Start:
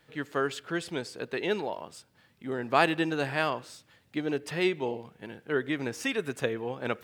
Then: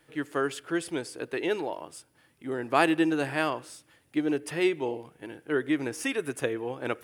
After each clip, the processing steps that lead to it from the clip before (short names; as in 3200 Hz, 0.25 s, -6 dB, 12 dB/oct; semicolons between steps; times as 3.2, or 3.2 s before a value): thirty-one-band EQ 100 Hz -5 dB, 200 Hz -9 dB, 315 Hz +7 dB, 4000 Hz -5 dB, 10000 Hz +12 dB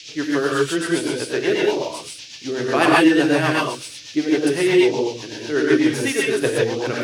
non-linear reverb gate 0.2 s rising, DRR -4.5 dB; band noise 2300–6200 Hz -43 dBFS; rotary speaker horn 8 Hz; gain +7 dB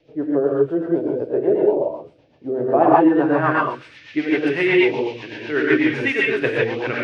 low-pass sweep 610 Hz -> 2300 Hz, 2.59–4.24; gain -1.5 dB